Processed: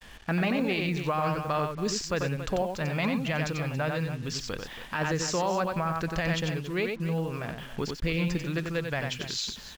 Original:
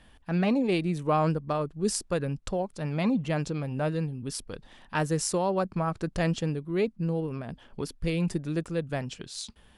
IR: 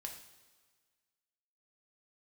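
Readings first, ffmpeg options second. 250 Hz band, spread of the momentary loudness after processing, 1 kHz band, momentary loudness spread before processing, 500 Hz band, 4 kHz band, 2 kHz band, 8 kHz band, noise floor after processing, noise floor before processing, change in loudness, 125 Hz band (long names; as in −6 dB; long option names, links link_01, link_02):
−2.0 dB, 6 LU, +1.0 dB, 12 LU, −1.0 dB, +5.5 dB, +6.0 dB, −0.5 dB, −45 dBFS, −57 dBFS, −0.5 dB, −0.5 dB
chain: -filter_complex "[0:a]asplit=2[link_01][link_02];[link_02]acompressor=threshold=-39dB:ratio=6,volume=2dB[link_03];[link_01][link_03]amix=inputs=2:normalize=0,equalizer=frequency=2100:width_type=o:width=2:gain=7.5,aresample=16000,aresample=44100,agate=range=-33dB:threshold=-46dB:ratio=3:detection=peak,adynamicequalizer=threshold=0.0126:dfrequency=290:dqfactor=0.86:tfrequency=290:tqfactor=0.86:attack=5:release=100:ratio=0.375:range=3.5:mode=cutabove:tftype=bell,aecho=1:1:92|279:0.501|0.188,alimiter=limit=-17.5dB:level=0:latency=1:release=12,acrusher=bits=7:mix=0:aa=0.5,volume=-1.5dB"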